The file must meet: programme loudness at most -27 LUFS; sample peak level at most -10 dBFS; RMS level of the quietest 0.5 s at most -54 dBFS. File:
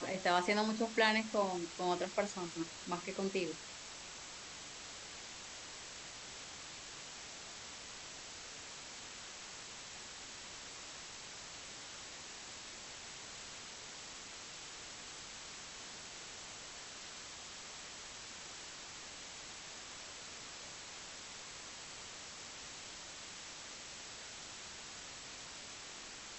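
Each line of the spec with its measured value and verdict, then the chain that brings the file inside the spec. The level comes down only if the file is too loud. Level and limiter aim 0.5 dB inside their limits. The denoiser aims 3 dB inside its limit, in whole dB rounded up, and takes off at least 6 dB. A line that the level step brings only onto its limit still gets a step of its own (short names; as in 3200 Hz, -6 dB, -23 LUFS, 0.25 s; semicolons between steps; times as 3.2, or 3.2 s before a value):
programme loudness -43.0 LUFS: OK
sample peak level -15.5 dBFS: OK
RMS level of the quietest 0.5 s -50 dBFS: fail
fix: denoiser 7 dB, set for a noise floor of -50 dBFS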